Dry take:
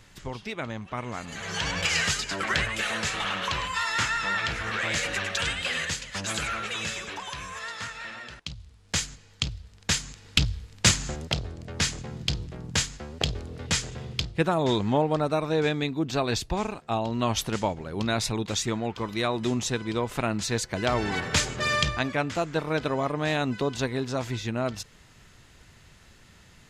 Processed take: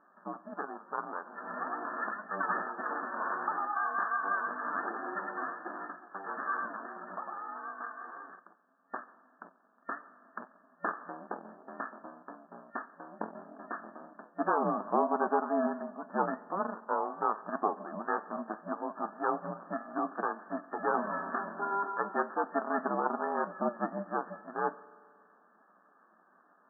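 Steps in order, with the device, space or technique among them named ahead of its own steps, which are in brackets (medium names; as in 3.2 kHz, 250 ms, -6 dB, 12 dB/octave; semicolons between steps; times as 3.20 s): 19.98–20.94 s: Chebyshev high-pass 380 Hz, order 10; FFT band-pass 370–1600 Hz; alien voice (ring modulator 200 Hz; flange 1.7 Hz, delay 6.6 ms, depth 2.8 ms, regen +70%); peaking EQ 1.2 kHz +5.5 dB 0.3 oct; spring tank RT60 1.9 s, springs 44 ms, chirp 30 ms, DRR 18 dB; trim +4 dB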